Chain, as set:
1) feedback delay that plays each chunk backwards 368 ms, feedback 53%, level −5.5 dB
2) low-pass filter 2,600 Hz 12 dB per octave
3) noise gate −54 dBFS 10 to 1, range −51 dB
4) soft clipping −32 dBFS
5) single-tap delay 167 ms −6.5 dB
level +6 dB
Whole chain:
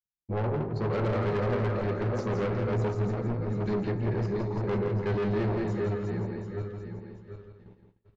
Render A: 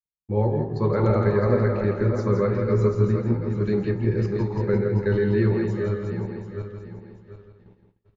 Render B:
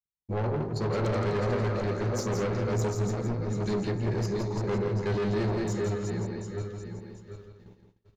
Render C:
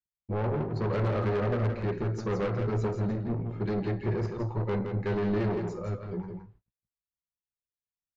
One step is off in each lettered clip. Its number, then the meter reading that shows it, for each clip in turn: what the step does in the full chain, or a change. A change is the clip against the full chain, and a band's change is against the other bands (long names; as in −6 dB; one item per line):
4, distortion level −7 dB
2, 4 kHz band +6.0 dB
1, change in momentary loudness spread −2 LU